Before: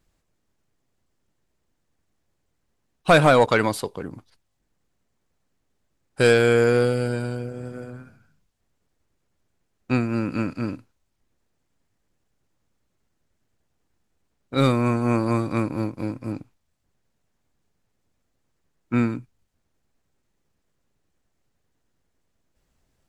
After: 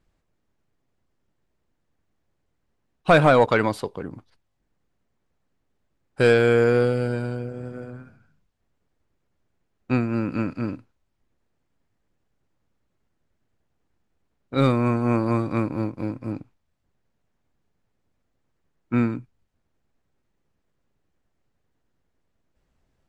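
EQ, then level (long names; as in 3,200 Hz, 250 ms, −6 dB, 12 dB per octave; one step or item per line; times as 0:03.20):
high-shelf EQ 5,100 Hz −12 dB
0.0 dB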